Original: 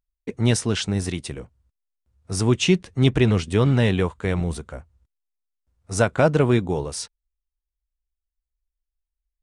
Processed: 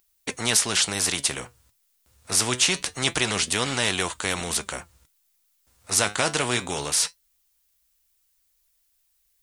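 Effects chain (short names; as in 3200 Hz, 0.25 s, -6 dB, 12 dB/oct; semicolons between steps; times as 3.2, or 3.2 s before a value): flange 0.25 Hz, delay 2.6 ms, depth 7.5 ms, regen +71%; tilt +3.5 dB/oct; spectral compressor 2:1; gain +2.5 dB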